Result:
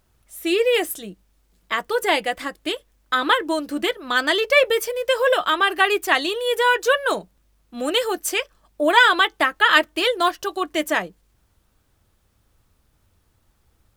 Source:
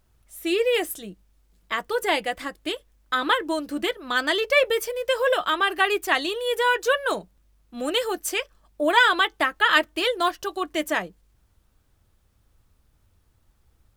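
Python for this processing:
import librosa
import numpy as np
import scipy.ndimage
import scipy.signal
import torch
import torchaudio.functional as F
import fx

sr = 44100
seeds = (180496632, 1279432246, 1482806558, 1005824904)

y = fx.low_shelf(x, sr, hz=100.0, db=-6.0)
y = y * 10.0 ** (3.5 / 20.0)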